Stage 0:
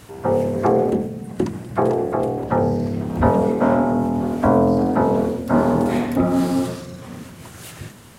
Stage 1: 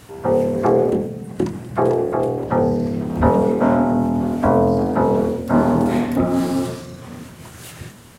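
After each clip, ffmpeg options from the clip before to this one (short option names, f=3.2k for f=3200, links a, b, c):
-filter_complex "[0:a]asplit=2[a][b];[b]adelay=25,volume=-10.5dB[c];[a][c]amix=inputs=2:normalize=0"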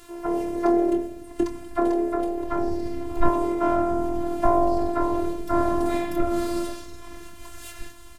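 -af "asubboost=boost=6:cutoff=96,afftfilt=real='hypot(re,im)*cos(PI*b)':imag='0':win_size=512:overlap=0.75"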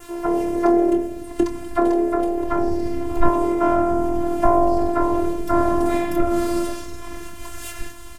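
-filter_complex "[0:a]adynamicequalizer=threshold=0.00126:dfrequency=4000:dqfactor=2.9:tfrequency=4000:tqfactor=2.9:attack=5:release=100:ratio=0.375:range=2.5:mode=cutabove:tftype=bell,asplit=2[a][b];[b]acompressor=threshold=-28dB:ratio=6,volume=-1.5dB[c];[a][c]amix=inputs=2:normalize=0,volume=2dB"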